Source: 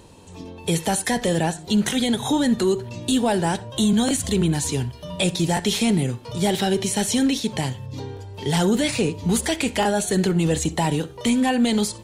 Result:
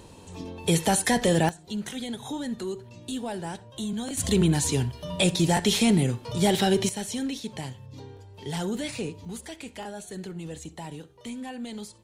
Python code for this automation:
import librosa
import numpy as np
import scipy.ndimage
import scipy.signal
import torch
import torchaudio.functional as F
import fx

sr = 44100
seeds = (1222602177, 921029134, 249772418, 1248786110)

y = fx.gain(x, sr, db=fx.steps((0.0, -0.5), (1.49, -12.5), (4.17, -1.0), (6.89, -10.5), (9.25, -17.0)))